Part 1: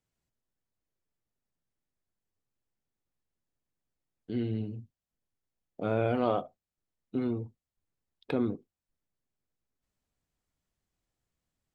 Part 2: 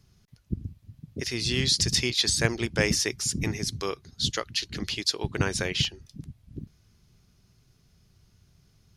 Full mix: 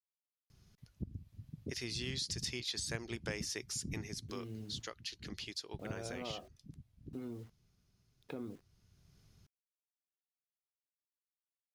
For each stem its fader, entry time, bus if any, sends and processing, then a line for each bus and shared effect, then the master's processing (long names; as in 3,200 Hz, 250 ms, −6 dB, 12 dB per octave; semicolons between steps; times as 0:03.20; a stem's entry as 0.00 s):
−11.0 dB, 0.00 s, no send, bit reduction 9 bits
−4.0 dB, 0.50 s, no send, automatic ducking −8 dB, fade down 0.30 s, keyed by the first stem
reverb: not used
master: downward compressor 3 to 1, threshold −40 dBFS, peak gain reduction 14 dB